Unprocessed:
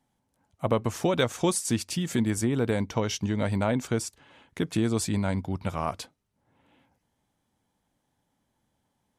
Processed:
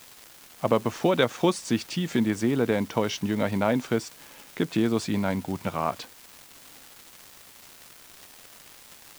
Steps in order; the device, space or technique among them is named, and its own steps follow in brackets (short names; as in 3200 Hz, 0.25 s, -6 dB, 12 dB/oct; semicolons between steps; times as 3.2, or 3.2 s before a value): 78 rpm shellac record (BPF 160–4500 Hz; crackle 390/s -38 dBFS; white noise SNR 24 dB); gain +3 dB